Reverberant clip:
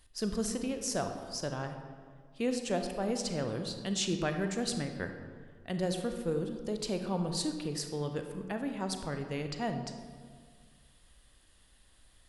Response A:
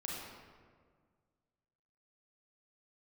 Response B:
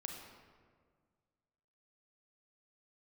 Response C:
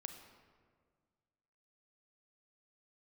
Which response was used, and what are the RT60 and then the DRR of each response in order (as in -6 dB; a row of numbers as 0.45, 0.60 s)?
C; 1.8, 1.8, 1.8 s; -4.5, 1.5, 5.5 dB